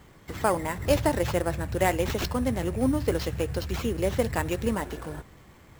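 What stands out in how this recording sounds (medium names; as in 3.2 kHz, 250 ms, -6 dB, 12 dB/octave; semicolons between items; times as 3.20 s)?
aliases and images of a low sample rate 9.6 kHz, jitter 0%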